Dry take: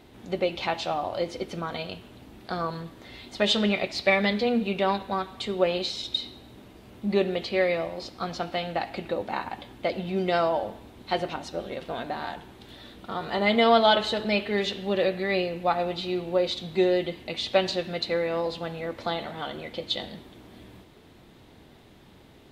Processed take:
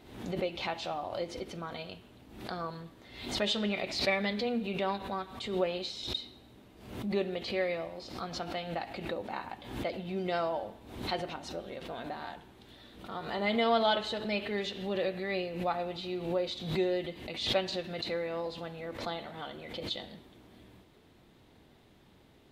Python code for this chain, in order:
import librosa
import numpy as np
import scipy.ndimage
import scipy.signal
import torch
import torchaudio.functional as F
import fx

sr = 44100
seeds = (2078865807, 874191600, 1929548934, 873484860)

y = fx.pre_swell(x, sr, db_per_s=76.0)
y = F.gain(torch.from_numpy(y), -8.0).numpy()